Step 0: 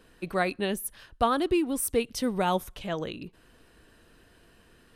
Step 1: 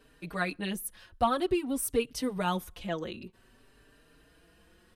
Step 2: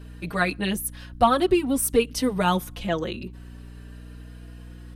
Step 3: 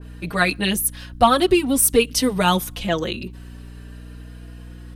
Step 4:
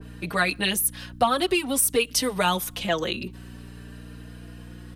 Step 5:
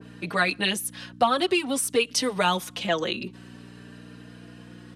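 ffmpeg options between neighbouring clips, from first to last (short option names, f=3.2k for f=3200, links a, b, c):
-filter_complex "[0:a]asplit=2[a][b];[b]adelay=4.6,afreqshift=0.51[c];[a][c]amix=inputs=2:normalize=1"
-af "aeval=exprs='val(0)+0.00398*(sin(2*PI*60*n/s)+sin(2*PI*2*60*n/s)/2+sin(2*PI*3*60*n/s)/3+sin(2*PI*4*60*n/s)/4+sin(2*PI*5*60*n/s)/5)':c=same,volume=8dB"
-af "adynamicequalizer=threshold=0.0141:dfrequency=2200:dqfactor=0.7:tfrequency=2200:tqfactor=0.7:attack=5:release=100:ratio=0.375:range=3:mode=boostabove:tftype=highshelf,volume=3.5dB"
-filter_complex "[0:a]acrossover=split=98|480[a][b][c];[a]acompressor=threshold=-48dB:ratio=4[d];[b]acompressor=threshold=-31dB:ratio=4[e];[c]acompressor=threshold=-19dB:ratio=4[f];[d][e][f]amix=inputs=3:normalize=0"
-af "highpass=140,lowpass=7.8k"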